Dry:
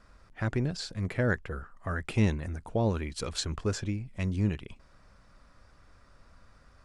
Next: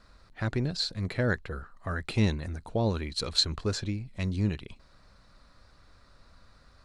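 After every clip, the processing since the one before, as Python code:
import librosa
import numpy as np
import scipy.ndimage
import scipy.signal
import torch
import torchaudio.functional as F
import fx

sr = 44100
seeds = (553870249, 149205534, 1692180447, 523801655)

y = fx.peak_eq(x, sr, hz=4100.0, db=13.0, octaves=0.27)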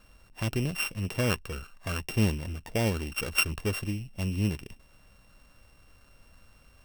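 y = np.r_[np.sort(x[:len(x) // 16 * 16].reshape(-1, 16), axis=1).ravel(), x[len(x) // 16 * 16:]]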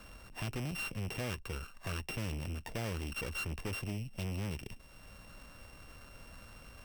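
y = fx.tube_stage(x, sr, drive_db=36.0, bias=0.5)
y = fx.band_squash(y, sr, depth_pct=40)
y = y * 10.0 ** (1.0 / 20.0)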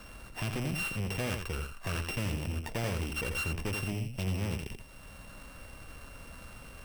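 y = x + 10.0 ** (-6.0 / 20.0) * np.pad(x, (int(85 * sr / 1000.0), 0))[:len(x)]
y = y * 10.0 ** (4.0 / 20.0)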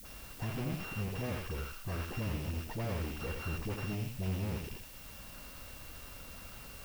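y = fx.delta_mod(x, sr, bps=32000, step_db=-47.0)
y = fx.dispersion(y, sr, late='highs', ms=52.0, hz=540.0)
y = fx.dmg_noise_colour(y, sr, seeds[0], colour='blue', level_db=-51.0)
y = y * 10.0 ** (-2.5 / 20.0)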